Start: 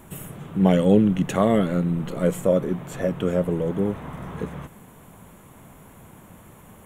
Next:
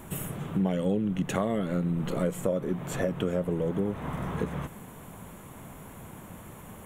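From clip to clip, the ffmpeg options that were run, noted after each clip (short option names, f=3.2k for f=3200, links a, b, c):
-af "acompressor=threshold=-27dB:ratio=5,volume=2dB"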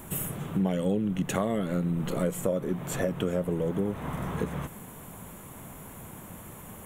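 -af "highshelf=f=7.6k:g=7.5"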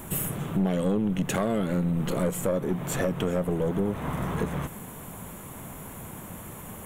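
-af "aeval=exprs='(tanh(14.1*val(0)+0.3)-tanh(0.3))/14.1':c=same,volume=4.5dB"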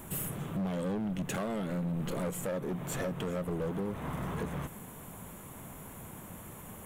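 -af "asoftclip=type=hard:threshold=-24dB,volume=-6dB"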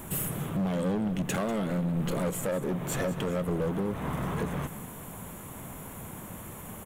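-af "aecho=1:1:193:0.178,volume=4.5dB"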